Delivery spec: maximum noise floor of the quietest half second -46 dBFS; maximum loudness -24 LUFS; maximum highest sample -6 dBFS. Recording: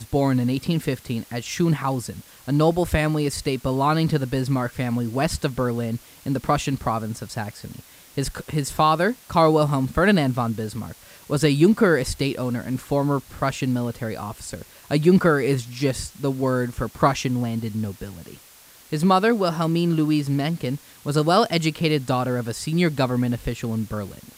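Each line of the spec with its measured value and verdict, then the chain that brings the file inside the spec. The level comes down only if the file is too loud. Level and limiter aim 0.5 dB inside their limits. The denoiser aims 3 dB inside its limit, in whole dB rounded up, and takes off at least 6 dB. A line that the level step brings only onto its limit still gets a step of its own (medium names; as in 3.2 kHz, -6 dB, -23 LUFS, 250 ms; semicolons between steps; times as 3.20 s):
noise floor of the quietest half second -49 dBFS: pass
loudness -22.5 LUFS: fail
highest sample -5.0 dBFS: fail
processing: trim -2 dB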